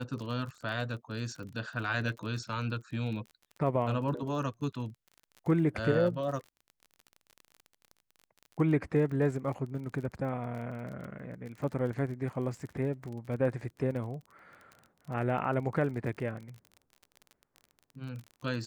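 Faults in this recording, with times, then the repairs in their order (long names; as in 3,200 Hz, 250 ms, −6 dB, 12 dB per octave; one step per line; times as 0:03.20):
surface crackle 32 per second −40 dBFS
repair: click removal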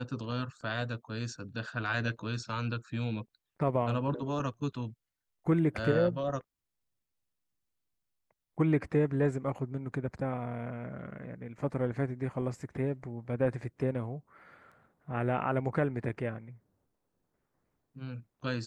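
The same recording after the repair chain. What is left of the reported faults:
none of them is left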